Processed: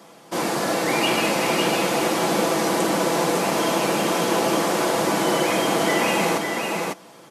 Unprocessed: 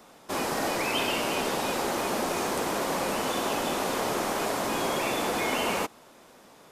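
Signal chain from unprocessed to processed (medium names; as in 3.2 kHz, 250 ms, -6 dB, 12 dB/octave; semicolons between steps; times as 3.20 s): high-pass 160 Hz 12 dB/octave; bass shelf 350 Hz +3 dB; comb 5.5 ms, depth 41%; delay 506 ms -3.5 dB; speed mistake 48 kHz file played as 44.1 kHz; trim +4.5 dB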